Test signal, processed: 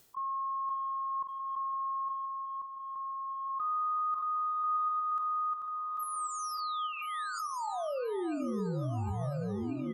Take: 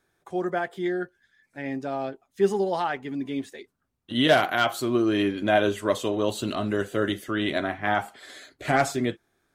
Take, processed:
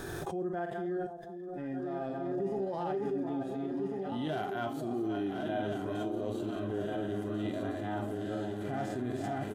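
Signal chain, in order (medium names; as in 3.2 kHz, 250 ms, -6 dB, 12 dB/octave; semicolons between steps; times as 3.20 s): backward echo that repeats 697 ms, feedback 67%, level -5.5 dB; treble shelf 2.9 kHz +8.5 dB; band-stop 2.2 kHz, Q 8.2; harmonic-percussive split percussive -16 dB; tilt shelf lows +7 dB, about 1.1 kHz; reverse; compression 5:1, threshold -33 dBFS; reverse; transient shaper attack -2 dB, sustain -7 dB; doubling 46 ms -12 dB; echo whose repeats swap between lows and highs 513 ms, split 1 kHz, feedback 64%, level -9 dB; swell ahead of each attack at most 21 dB/s; trim -1.5 dB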